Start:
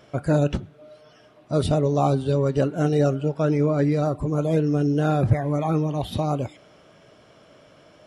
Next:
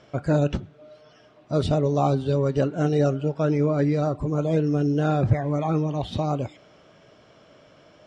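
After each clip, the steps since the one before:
low-pass filter 7,300 Hz 24 dB per octave
level −1 dB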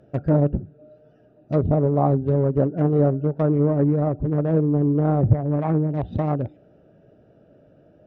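adaptive Wiener filter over 41 samples
treble cut that deepens with the level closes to 1,000 Hz, closed at −20 dBFS
level +3.5 dB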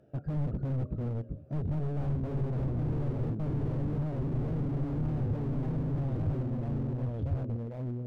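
delay with pitch and tempo change per echo 313 ms, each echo −2 semitones, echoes 2
slew-rate limiting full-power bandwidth 16 Hz
level −8.5 dB

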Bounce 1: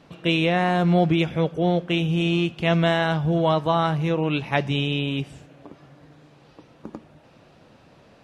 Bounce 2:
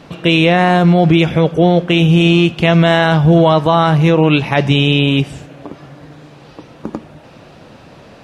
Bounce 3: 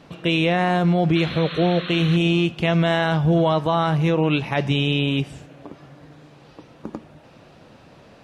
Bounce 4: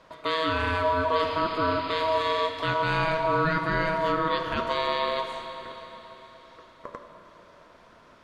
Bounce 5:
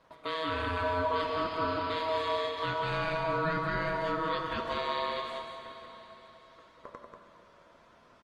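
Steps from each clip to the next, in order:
boost into a limiter +14 dB; level −1 dB
sound drawn into the spectrogram noise, 0:01.15–0:02.17, 1,000–4,300 Hz −26 dBFS; level −8.5 dB
ring modulation 800 Hz; four-comb reverb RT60 3.9 s, combs from 30 ms, DRR 5.5 dB; level −4.5 dB
single-tap delay 189 ms −5.5 dB; level −7 dB; Opus 24 kbit/s 48,000 Hz

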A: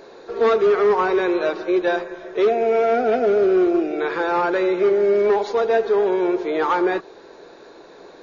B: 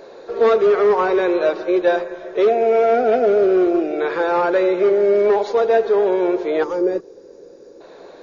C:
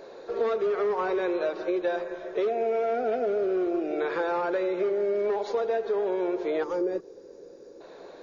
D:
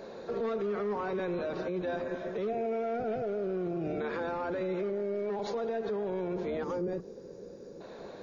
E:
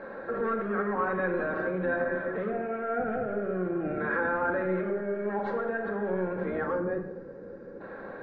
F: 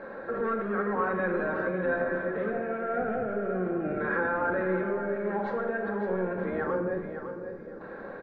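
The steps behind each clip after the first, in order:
gain on a spectral selection 0:06.63–0:07.81, 580–4,600 Hz −14 dB; parametric band 560 Hz +6.5 dB 0.55 octaves
downward compressor, threshold −19 dBFS, peak gain reduction 8 dB; level −5 dB
sub-octave generator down 1 octave, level −1 dB; brickwall limiter −26.5 dBFS, peak gain reduction 10.5 dB
low-pass with resonance 1,600 Hz, resonance Q 3.9; convolution reverb RT60 0.80 s, pre-delay 4 ms, DRR 3 dB
repeating echo 556 ms, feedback 27%, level −9.5 dB

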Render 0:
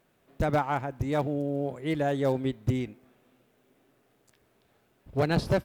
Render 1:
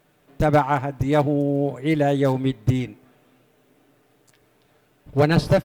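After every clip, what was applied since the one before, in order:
comb filter 6.7 ms, depth 44%
level +6 dB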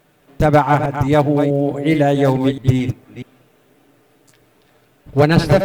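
delay that plays each chunk backwards 215 ms, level −8 dB
level +5 dB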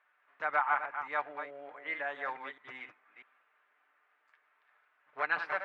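flat-topped band-pass 1,500 Hz, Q 1.3
level −7.5 dB

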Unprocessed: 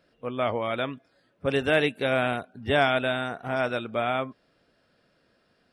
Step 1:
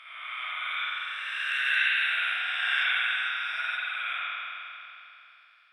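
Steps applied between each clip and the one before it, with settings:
peak hold with a rise ahead of every peak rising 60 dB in 2.29 s
inverse Chebyshev high-pass filter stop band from 450 Hz, stop band 60 dB
convolution reverb RT60 2.9 s, pre-delay 44 ms, DRR −9 dB
level −8 dB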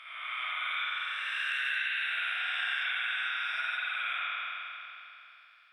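downward compressor, threshold −29 dBFS, peak gain reduction 8 dB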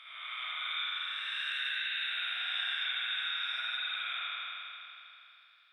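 parametric band 3,700 Hz +14.5 dB 0.2 octaves
level −5.5 dB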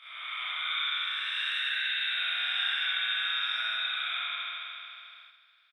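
on a send: repeating echo 64 ms, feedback 55%, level −6 dB
on the sum: noise gate −55 dBFS, range −6 dB
level +3 dB

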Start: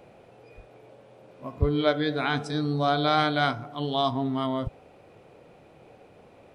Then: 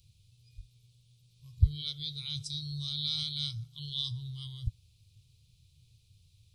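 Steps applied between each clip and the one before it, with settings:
elliptic band-stop filter 110–3,900 Hz, stop band 40 dB
level +3 dB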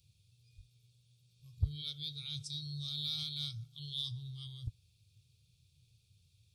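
notch comb filter 1,000 Hz
in parallel at −8 dB: gain into a clipping stage and back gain 32 dB
on the sum: level −5.5 dB

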